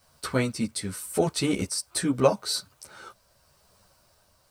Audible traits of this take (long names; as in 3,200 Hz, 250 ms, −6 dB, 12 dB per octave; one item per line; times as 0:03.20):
a quantiser's noise floor 12 bits, dither triangular
tremolo triangle 0.86 Hz, depth 35%
a shimmering, thickened sound